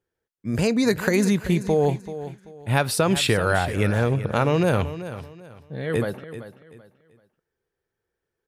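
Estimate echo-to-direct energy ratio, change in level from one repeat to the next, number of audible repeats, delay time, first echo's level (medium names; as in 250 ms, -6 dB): -12.5 dB, -11.0 dB, 3, 385 ms, -13.0 dB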